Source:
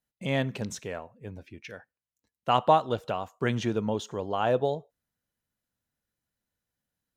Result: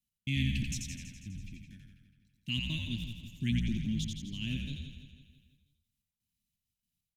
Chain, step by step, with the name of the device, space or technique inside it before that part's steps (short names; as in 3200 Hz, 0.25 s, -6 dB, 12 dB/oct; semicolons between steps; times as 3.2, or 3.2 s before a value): elliptic band-stop 240–2500 Hz, stop band 40 dB; trance gate with a delay (step gate "x..xxxx.x.x" 167 bpm -60 dB; feedback echo 0.164 s, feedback 54%, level -10.5 dB); frequency-shifting echo 87 ms, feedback 42%, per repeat -61 Hz, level -3.5 dB